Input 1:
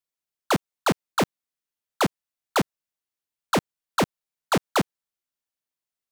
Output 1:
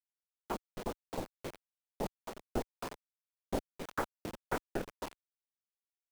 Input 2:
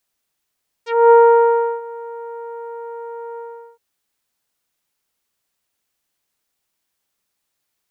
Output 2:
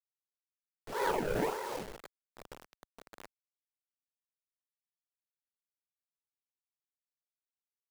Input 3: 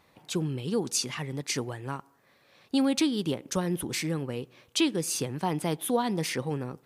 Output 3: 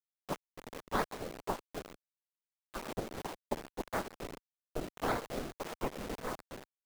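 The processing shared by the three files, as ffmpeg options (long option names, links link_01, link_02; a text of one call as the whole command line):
ffmpeg -i in.wav -filter_complex "[0:a]asplit=2[link_01][link_02];[link_02]acontrast=43,volume=0.5dB[link_03];[link_01][link_03]amix=inputs=2:normalize=0,aderivative,afftfilt=real='hypot(re,im)*cos(2*PI*random(0))':imag='hypot(re,im)*sin(2*PI*random(1))':win_size=512:overlap=0.75,asoftclip=type=tanh:threshold=-18.5dB,aecho=1:1:269|353:0.355|0.133,acrusher=samples=30:mix=1:aa=0.000001:lfo=1:lforange=30:lforate=1.7,acompressor=mode=upward:threshold=-49dB:ratio=2.5,afwtdn=0.01,lowpass=frequency=1700:poles=1,acrusher=bits=6:mix=0:aa=0.000001,equalizer=frequency=85:width_type=o:width=1.9:gain=-8,tremolo=f=2.8:d=0.41,volume=1dB" out.wav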